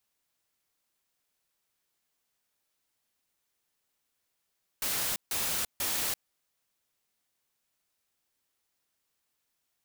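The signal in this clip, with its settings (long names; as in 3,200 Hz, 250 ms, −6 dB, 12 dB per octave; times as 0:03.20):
noise bursts white, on 0.34 s, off 0.15 s, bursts 3, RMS −31 dBFS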